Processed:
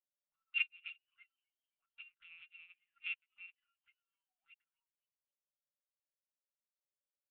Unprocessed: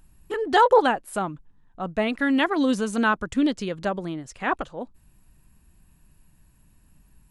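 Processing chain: FFT order left unsorted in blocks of 256 samples; dynamic EQ 2900 Hz, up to +6 dB, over -40 dBFS, Q 1; auto-wah 550–2400 Hz, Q 13, up, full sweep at -19 dBFS; harmonic-percussive split harmonic +5 dB; LPC vocoder at 8 kHz pitch kept; frequency-shifting echo 0.26 s, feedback 52%, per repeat +110 Hz, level -20 dB; upward expander 2.5:1, over -48 dBFS; gain -4 dB

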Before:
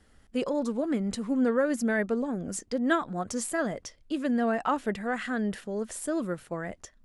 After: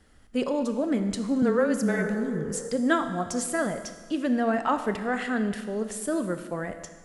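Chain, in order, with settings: 1.94–2.67 spectral repair 410–1900 Hz both; 1.42–2.51 frequency shift -21 Hz; Schroeder reverb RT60 1.5 s, combs from 25 ms, DRR 8.5 dB; gain +2 dB

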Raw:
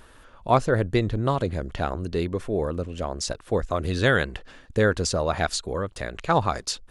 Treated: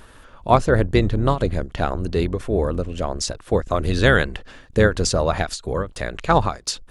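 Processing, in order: octaver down 2 oct, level -3 dB; ending taper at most 220 dB/s; gain +4.5 dB

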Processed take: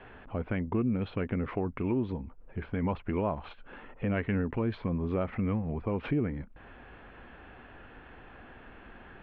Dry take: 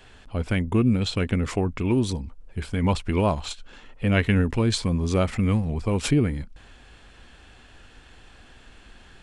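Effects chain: Bessel low-pass 1600 Hz, order 6; low shelf 110 Hz -11 dB; in parallel at -2 dB: limiter -19.5 dBFS, peak gain reduction 9 dB; on the sum: compressor 1.5:1, threshold -43 dBFS, peak gain reduction 10 dB

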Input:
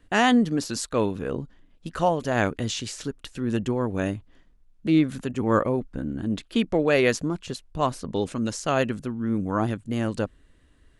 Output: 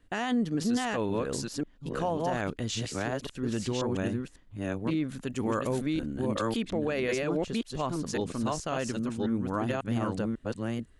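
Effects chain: reverse delay 0.545 s, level -1.5 dB; 5.27–6.57 high shelf 3300 Hz +11 dB; limiter -15 dBFS, peak gain reduction 8.5 dB; gain -5 dB

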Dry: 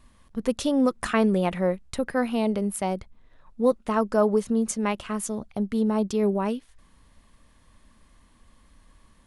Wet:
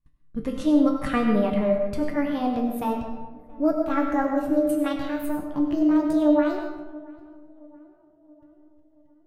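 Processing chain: gliding pitch shift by +10 st starting unshifted; tone controls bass +10 dB, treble -8 dB; gate -40 dBFS, range -29 dB; resonator 150 Hz, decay 0.38 s, harmonics all, mix 80%; de-hum 86.89 Hz, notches 36; tape echo 0.677 s, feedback 59%, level -21 dB, low-pass 1200 Hz; digital reverb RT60 1 s, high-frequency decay 0.6×, pre-delay 55 ms, DRR 4.5 dB; gain +8 dB

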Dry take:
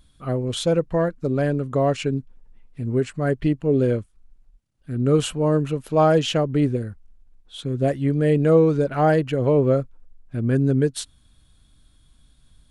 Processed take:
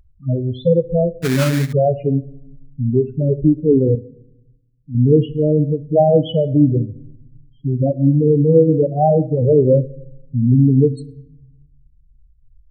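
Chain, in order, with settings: Wiener smoothing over 25 samples; loudest bins only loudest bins 4; on a send at -15.5 dB: reverb RT60 0.75 s, pre-delay 5 ms; 1.22–1.73 on the sum: sample-rate reducer 2000 Hz, jitter 20%; 3.95–4.95 tilt +2 dB/oct; in parallel at +1 dB: limiter -19.5 dBFS, peak gain reduction 11.5 dB; 8.28–9.11 on the sum: notches 60/120/180/240/300/360/420/480 Hz; upward expander 1.5:1, over -29 dBFS; gain +5.5 dB

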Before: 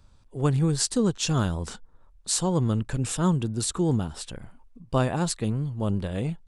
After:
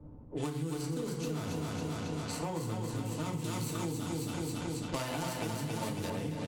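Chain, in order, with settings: median filter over 25 samples; tilt +2.5 dB/oct; feedback echo 0.274 s, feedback 57%, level -4 dB; FDN reverb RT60 0.51 s, low-frequency decay 1.4×, high-frequency decay 0.75×, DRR -1.5 dB; compressor 8:1, threshold -31 dBFS, peak gain reduction 14.5 dB; 3.44–6.1 high shelf 2400 Hz +11 dB; low-pass opened by the level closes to 350 Hz, open at -30.5 dBFS; three-band squash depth 70%; gain -2 dB

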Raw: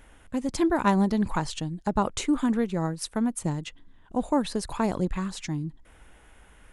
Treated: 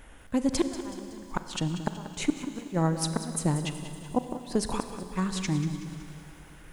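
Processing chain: flipped gate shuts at -16 dBFS, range -26 dB; Schroeder reverb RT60 3 s, combs from 33 ms, DRR 9.5 dB; lo-fi delay 0.187 s, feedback 55%, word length 9-bit, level -12 dB; gain +2.5 dB

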